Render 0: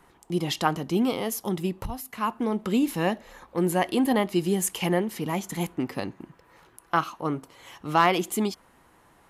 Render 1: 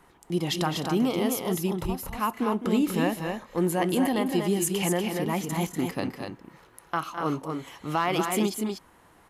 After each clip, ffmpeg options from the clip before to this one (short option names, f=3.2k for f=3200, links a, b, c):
-filter_complex "[0:a]alimiter=limit=-16dB:level=0:latency=1:release=111,asplit=2[a][b];[b]aecho=0:1:209.9|242:0.251|0.562[c];[a][c]amix=inputs=2:normalize=0"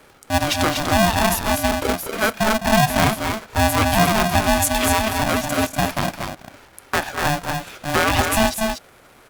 -af "aeval=exprs='val(0)*sgn(sin(2*PI*440*n/s))':c=same,volume=7.5dB"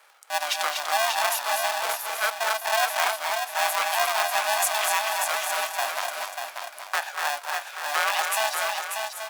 -filter_complex "[0:a]highpass=f=690:w=0.5412,highpass=f=690:w=1.3066,asplit=2[a][b];[b]aecho=0:1:590|1180|1770:0.531|0.101|0.0192[c];[a][c]amix=inputs=2:normalize=0,volume=-4.5dB"